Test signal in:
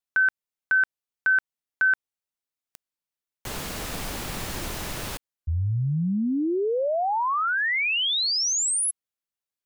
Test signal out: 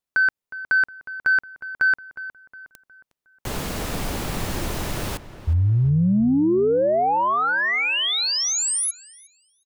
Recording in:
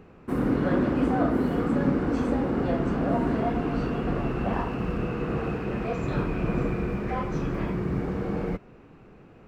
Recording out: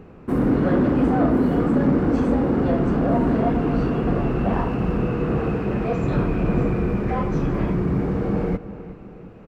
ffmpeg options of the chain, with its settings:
-filter_complex "[0:a]tiltshelf=f=970:g=3,asoftclip=type=tanh:threshold=-15dB,asplit=2[a][b];[b]adelay=362,lowpass=f=2.7k:p=1,volume=-14dB,asplit=2[c][d];[d]adelay=362,lowpass=f=2.7k:p=1,volume=0.44,asplit=2[e][f];[f]adelay=362,lowpass=f=2.7k:p=1,volume=0.44,asplit=2[g][h];[h]adelay=362,lowpass=f=2.7k:p=1,volume=0.44[i];[a][c][e][g][i]amix=inputs=5:normalize=0,volume=4.5dB"

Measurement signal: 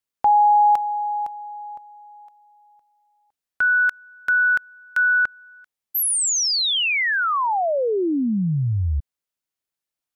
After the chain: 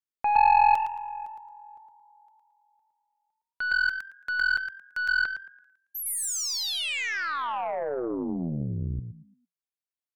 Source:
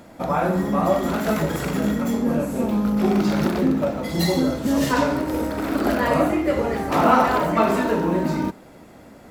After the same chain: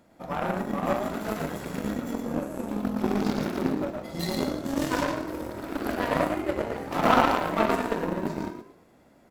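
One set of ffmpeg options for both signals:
-filter_complex "[0:a]asplit=5[a][b][c][d][e];[b]adelay=111,afreqshift=43,volume=-3.5dB[f];[c]adelay=222,afreqshift=86,volume=-13.7dB[g];[d]adelay=333,afreqshift=129,volume=-23.8dB[h];[e]adelay=444,afreqshift=172,volume=-34dB[i];[a][f][g][h][i]amix=inputs=5:normalize=0,aeval=exprs='0.841*(cos(1*acos(clip(val(0)/0.841,-1,1)))-cos(1*PI/2))+0.0473*(cos(2*acos(clip(val(0)/0.841,-1,1)))-cos(2*PI/2))+0.168*(cos(3*acos(clip(val(0)/0.841,-1,1)))-cos(3*PI/2))+0.0106*(cos(5*acos(clip(val(0)/0.841,-1,1)))-cos(5*PI/2))+0.0335*(cos(7*acos(clip(val(0)/0.841,-1,1)))-cos(7*PI/2))':c=same"

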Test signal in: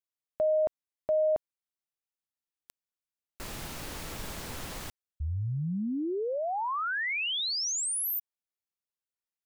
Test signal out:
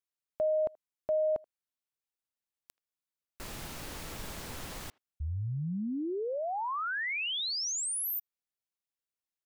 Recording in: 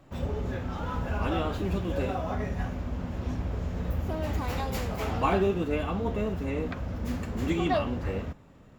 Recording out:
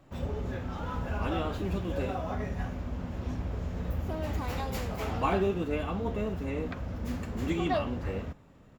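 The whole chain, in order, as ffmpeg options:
-filter_complex "[0:a]asplit=2[a][b];[b]adelay=80,highpass=300,lowpass=3.4k,asoftclip=type=hard:threshold=-22.5dB,volume=-26dB[c];[a][c]amix=inputs=2:normalize=0,volume=-2.5dB"

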